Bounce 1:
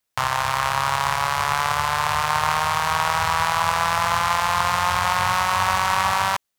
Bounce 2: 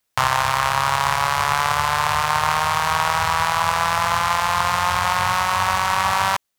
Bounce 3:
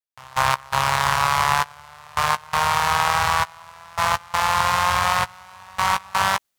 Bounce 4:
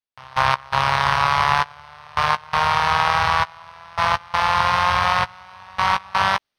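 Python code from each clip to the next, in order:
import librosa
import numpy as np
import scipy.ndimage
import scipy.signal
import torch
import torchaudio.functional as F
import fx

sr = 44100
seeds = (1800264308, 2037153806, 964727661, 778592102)

y1 = fx.rider(x, sr, range_db=10, speed_s=0.5)
y1 = F.gain(torch.from_numpy(y1), 1.5).numpy()
y2 = fx.step_gate(y1, sr, bpm=83, pattern='..x.xxxxx.', floor_db=-24.0, edge_ms=4.5)
y2 = fx.doubler(y2, sr, ms=15.0, db=-12.0)
y3 = scipy.signal.savgol_filter(y2, 15, 4, mode='constant')
y3 = F.gain(torch.from_numpy(y3), 1.5).numpy()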